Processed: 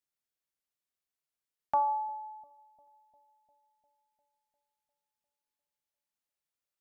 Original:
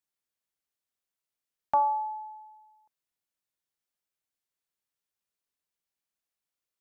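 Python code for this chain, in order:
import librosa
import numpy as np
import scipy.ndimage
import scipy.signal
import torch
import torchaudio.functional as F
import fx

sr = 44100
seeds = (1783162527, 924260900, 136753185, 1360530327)

y = fx.low_shelf(x, sr, hz=330.0, db=7.5, at=(1.88, 2.51))
y = fx.echo_bbd(y, sr, ms=350, stages=2048, feedback_pct=65, wet_db=-22.5)
y = y * librosa.db_to_amplitude(-3.5)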